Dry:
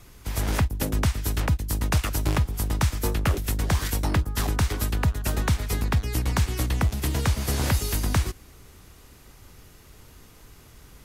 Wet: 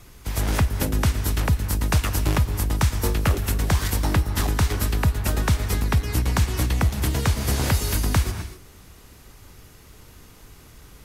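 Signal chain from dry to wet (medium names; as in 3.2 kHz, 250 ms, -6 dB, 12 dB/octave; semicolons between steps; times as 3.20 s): gated-style reverb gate 280 ms rising, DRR 10 dB; trim +2 dB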